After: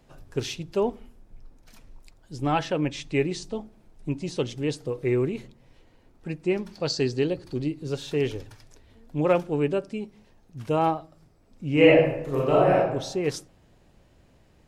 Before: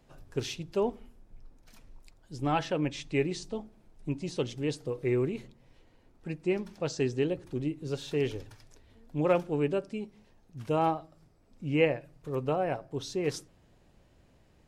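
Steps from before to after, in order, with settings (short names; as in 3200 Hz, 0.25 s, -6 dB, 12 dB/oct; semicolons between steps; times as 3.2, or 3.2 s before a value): 6.72–7.83 bell 4500 Hz +14.5 dB 0.25 oct; 11.72–12.83 reverb throw, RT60 0.84 s, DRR -5 dB; gain +4 dB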